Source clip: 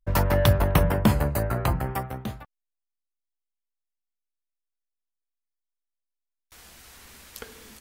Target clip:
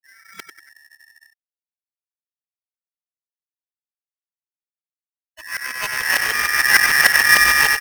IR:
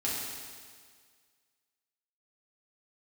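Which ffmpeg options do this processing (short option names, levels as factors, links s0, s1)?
-filter_complex "[0:a]areverse,lowpass=4100,asplit=2[s0][s1];[s1]adelay=96,lowpass=f=2000:p=1,volume=0.531,asplit=2[s2][s3];[s3]adelay=96,lowpass=f=2000:p=1,volume=0.5,asplit=2[s4][s5];[s5]adelay=96,lowpass=f=2000:p=1,volume=0.5,asplit=2[s6][s7];[s7]adelay=96,lowpass=f=2000:p=1,volume=0.5,asplit=2[s8][s9];[s9]adelay=96,lowpass=f=2000:p=1,volume=0.5,asplit=2[s10][s11];[s11]adelay=96,lowpass=f=2000:p=1,volume=0.5[s12];[s2][s4][s6][s8][s10][s12]amix=inputs=6:normalize=0[s13];[s0][s13]amix=inputs=2:normalize=0,afftfilt=real='re*gte(hypot(re,im),0.0158)':imag='im*gte(hypot(re,im),0.0158)':win_size=1024:overlap=0.75,asplit=2[s14][s15];[s15]acrusher=samples=19:mix=1:aa=0.000001,volume=0.282[s16];[s14][s16]amix=inputs=2:normalize=0,aeval=exprs='val(0)*sgn(sin(2*PI*1800*n/s))':c=same,volume=1.33"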